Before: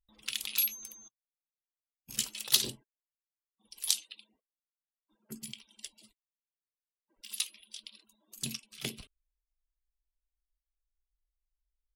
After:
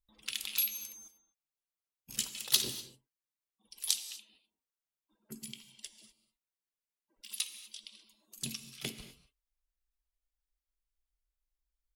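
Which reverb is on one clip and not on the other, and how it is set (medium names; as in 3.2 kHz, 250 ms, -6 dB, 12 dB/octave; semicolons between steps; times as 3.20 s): gated-style reverb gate 270 ms flat, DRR 10.5 dB; trim -2 dB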